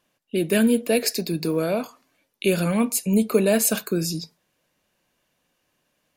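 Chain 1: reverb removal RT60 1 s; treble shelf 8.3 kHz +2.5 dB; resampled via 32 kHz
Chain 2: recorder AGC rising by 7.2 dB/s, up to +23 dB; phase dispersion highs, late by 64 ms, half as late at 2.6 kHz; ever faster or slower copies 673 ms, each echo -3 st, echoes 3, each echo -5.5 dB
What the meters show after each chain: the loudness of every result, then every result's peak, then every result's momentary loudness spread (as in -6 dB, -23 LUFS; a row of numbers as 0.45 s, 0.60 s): -23.0 LUFS, -22.5 LUFS; -7.0 dBFS, -6.0 dBFS; 9 LU, 9 LU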